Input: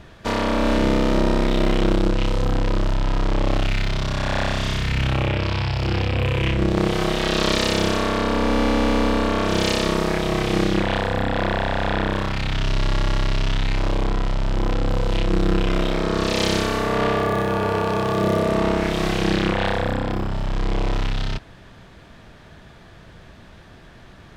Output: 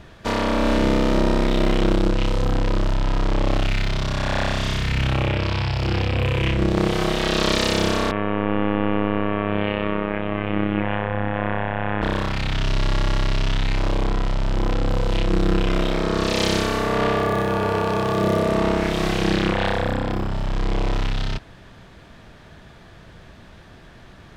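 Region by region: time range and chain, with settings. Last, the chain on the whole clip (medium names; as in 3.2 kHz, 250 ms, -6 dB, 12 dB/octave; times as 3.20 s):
8.11–12.02 s: steep low-pass 2.9 kHz 48 dB/octave + robot voice 103 Hz
whole clip: none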